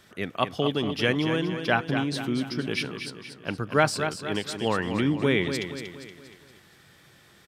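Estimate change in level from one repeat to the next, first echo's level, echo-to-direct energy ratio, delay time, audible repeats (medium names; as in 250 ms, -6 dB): -6.5 dB, -8.0 dB, -7.0 dB, 236 ms, 5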